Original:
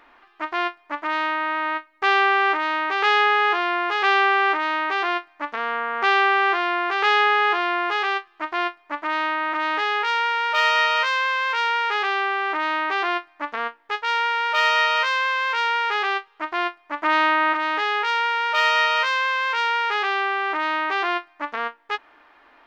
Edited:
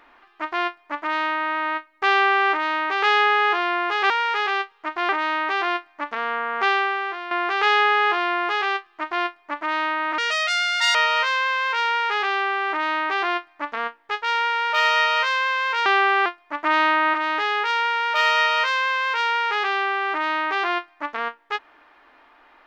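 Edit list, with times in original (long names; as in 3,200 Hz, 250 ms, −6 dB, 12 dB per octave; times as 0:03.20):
0:04.10–0:04.50: swap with 0:15.66–0:16.65
0:06.02–0:06.72: fade out quadratic, to −10 dB
0:09.59–0:10.75: play speed 151%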